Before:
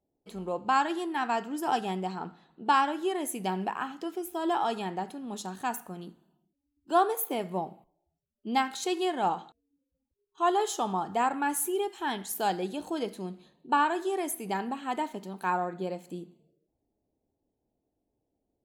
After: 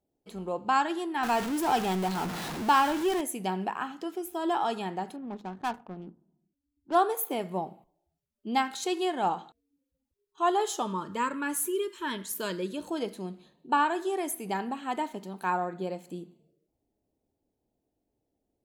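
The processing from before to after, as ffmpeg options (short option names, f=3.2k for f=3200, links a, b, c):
-filter_complex "[0:a]asettb=1/sr,asplit=3[a][b][c];[a]atrim=end=1.234[d];[b]atrim=start=1.23:end=3.21,asetpts=PTS-STARTPTS,afade=t=in:d=0.004:c=qsin,afade=t=out:st=1.976:d=0.004:c=qsin,aeval=exprs='val(0)+0.5*0.0316*sgn(val(0))':c=same[e];[c]atrim=start=3.206[f];[d][e]acrossfade=d=0.004:c1=hsin:c2=qsin[g];[g][f]acrossfade=d=0.004:c1=qsin:c2=hsin,asettb=1/sr,asplit=3[h][i][j];[h]atrim=end=5.164[k];[i]atrim=start=5.16:end=6.95,asetpts=PTS-STARTPTS,afade=t=in:d=0.004:c=qsin,afade=t=out:st=1.786:d=0.004:c=qsin,adynamicsmooth=sensitivity=7.5:basefreq=510[l];[j]atrim=start=6.946[m];[k][l]acrossfade=d=0.004:c1=hsin:c2=qsin[n];[n][m]acrossfade=d=0.004:c1=qsin:c2=hsin,asettb=1/sr,asplit=3[o][p][q];[o]atrim=end=10.824[r];[p]atrim=start=10.82:end=12.88,asetpts=PTS-STARTPTS,afade=t=in:d=0.004:c=qsin,afade=t=out:st=2.056:d=0.004:c=qsin,asuperstop=centerf=760:order=8:qfactor=3[s];[q]atrim=start=12.876[t];[r][s]acrossfade=d=0.004:c1=hsin:c2=qsin[u];[u][t]acrossfade=d=0.004:c1=qsin:c2=hsin"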